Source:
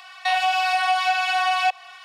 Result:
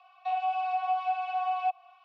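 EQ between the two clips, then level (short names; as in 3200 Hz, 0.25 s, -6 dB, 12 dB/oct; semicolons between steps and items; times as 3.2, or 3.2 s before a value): vowel filter a; LPF 7100 Hz 24 dB/oct; -6.0 dB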